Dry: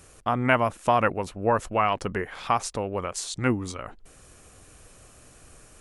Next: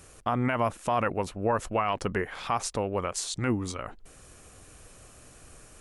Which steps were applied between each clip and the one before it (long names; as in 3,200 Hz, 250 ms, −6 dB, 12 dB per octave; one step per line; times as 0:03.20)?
brickwall limiter −16 dBFS, peak gain reduction 11 dB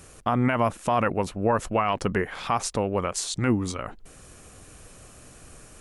parametric band 190 Hz +3 dB 1.2 octaves
level +3 dB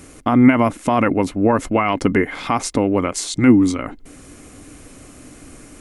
hollow resonant body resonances 280/2,100 Hz, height 14 dB, ringing for 50 ms
level +4.5 dB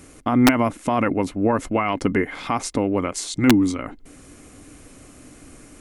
wrap-around overflow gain 2.5 dB
level −4 dB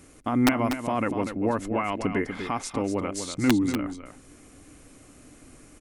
single-tap delay 243 ms −8.5 dB
level −6 dB